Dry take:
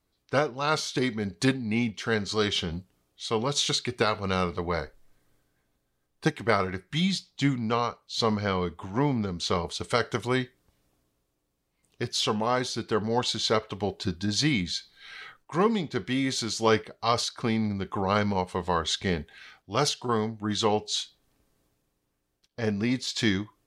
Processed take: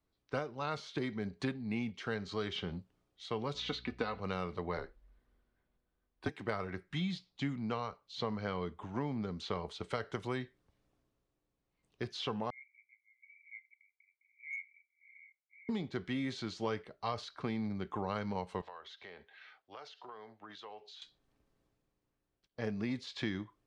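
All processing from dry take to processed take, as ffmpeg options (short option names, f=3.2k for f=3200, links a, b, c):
-filter_complex "[0:a]asettb=1/sr,asplit=3[a][b][c];[a]atrim=end=3.544[d];[b]atrim=start=3.54:end=4.2,asetpts=PTS-STARTPTS,afade=t=in:d=0.004:c=qsin,afade=t=out:st=0.656:d=0.004:c=qsin,lowpass=5.3k,aecho=1:1:4:0.65,atrim=end_sample=29106,aeval=exprs='val(0)+0.00316*(sin(2*PI*60*n/s)+sin(2*PI*2*60*n/s)/2+sin(2*PI*3*60*n/s)/3+sin(2*PI*4*60*n/s)/4+sin(2*PI*5*60*n/s)/5)':c=same[e];[c]atrim=start=4.196[f];[d][e]acrossfade=d=0.004:c1=hsin:c2=qsin[g];[g][f]acrossfade=d=0.004:c1=qsin:c2=hsin,asettb=1/sr,asplit=3[h][i][j];[h]atrim=end=4.774[k];[i]atrim=start=4.77:end=6.29,asetpts=PTS-STARTPTS,afade=t=in:d=0.004:c=qsin,afade=t=out:st=1.516:d=0.004:c=qsin,equalizer=f=7k:w=1.2:g=-7.5,afreqshift=-54[l];[j]atrim=start=6.286[m];[k][l]acrossfade=d=0.004:c1=hsin:c2=qsin[n];[n][m]acrossfade=d=0.004:c1=qsin:c2=hsin,asettb=1/sr,asplit=3[o][p][q];[o]atrim=end=12.504[r];[p]atrim=start=12.5:end=15.69,asetpts=PTS-STARTPTS,afade=t=in:d=0.004:c=qsin,afade=t=out:st=3.186:d=0.004:c=qsin,asuperpass=centerf=2200:order=12:qfactor=7.2,asoftclip=type=hard:threshold=-27.5dB[s];[q]atrim=start=15.686[t];[r][s]acrossfade=d=0.004:c1=hsin:c2=qsin[u];[u][t]acrossfade=d=0.004:c1=qsin:c2=hsin,asettb=1/sr,asplit=3[v][w][x];[v]atrim=end=18.614[y];[w]atrim=start=18.61:end=21.02,asetpts=PTS-STARTPTS,afade=t=in:d=0.004:c=qsin,afade=t=out:st=2.406:d=0.004:c=qsin,acrossover=split=430 5300:gain=0.0891 1 0.0708[z][aa][ab];[z][aa][ab]amix=inputs=3:normalize=0,acompressor=threshold=-40dB:ratio=5:attack=3.2:release=140:knee=1:detection=peak[ac];[x]atrim=start=21.016[ad];[y][ac]acrossfade=d=0.004:c1=hsin:c2=qsin[ae];[ae][ad]acrossfade=d=0.004:c1=qsin:c2=hsin,aemphasis=mode=reproduction:type=50fm,acrossover=split=130|4100[af][ag][ah];[af]acompressor=threshold=-42dB:ratio=4[ai];[ag]acompressor=threshold=-27dB:ratio=4[aj];[ah]acompressor=threshold=-51dB:ratio=4[ak];[ai][aj][ak]amix=inputs=3:normalize=0,volume=-6.5dB"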